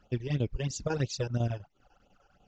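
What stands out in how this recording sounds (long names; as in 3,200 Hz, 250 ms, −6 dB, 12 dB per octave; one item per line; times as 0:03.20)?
phaser sweep stages 12, 3 Hz, lowest notch 200–1,800 Hz
chopped level 10 Hz, depth 60%, duty 75%
Ogg Vorbis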